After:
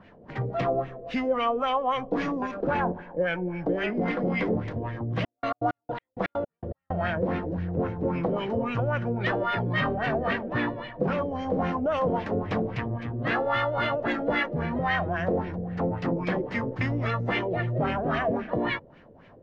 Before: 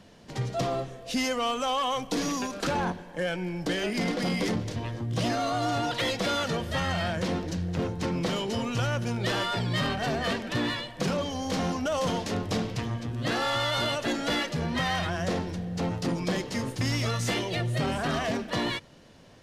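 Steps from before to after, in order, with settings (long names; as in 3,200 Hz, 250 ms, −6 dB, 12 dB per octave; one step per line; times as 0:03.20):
0:05.19–0:06.92: gate pattern "x..x.x.." 163 BPM −60 dB
auto-filter low-pass sine 3.7 Hz 470–2,300 Hz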